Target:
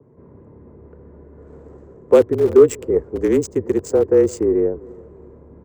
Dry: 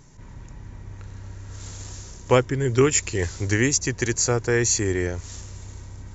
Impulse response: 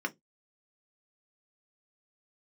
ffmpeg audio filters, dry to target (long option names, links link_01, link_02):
-filter_complex "[0:a]asplit=2[link_01][link_02];[link_02]adelay=372,lowpass=frequency=2000:poles=1,volume=-23dB,asplit=2[link_03][link_04];[link_04]adelay=372,lowpass=frequency=2000:poles=1,volume=0.35[link_05];[link_01][link_03][link_05]amix=inputs=3:normalize=0,asetrate=48000,aresample=44100,afreqshift=-33,highpass=87,equalizer=frequency=450:width=2:gain=13,acrossover=split=140|410|1400[link_06][link_07][link_08][link_09];[link_06]aeval=exprs='(mod(21.1*val(0)+1,2)-1)/21.1':channel_layout=same[link_10];[link_07]acontrast=87[link_11];[link_09]aeval=exprs='0.447*(cos(1*acos(clip(val(0)/0.447,-1,1)))-cos(1*PI/2))+0.0251*(cos(2*acos(clip(val(0)/0.447,-1,1)))-cos(2*PI/2))+0.0631*(cos(7*acos(clip(val(0)/0.447,-1,1)))-cos(7*PI/2))':channel_layout=same[link_12];[link_10][link_11][link_08][link_12]amix=inputs=4:normalize=0,adynamicequalizer=threshold=0.0126:dfrequency=1900:dqfactor=0.7:tfrequency=1900:tqfactor=0.7:attack=5:release=100:ratio=0.375:range=4:mode=cutabove:tftype=highshelf,volume=-3.5dB"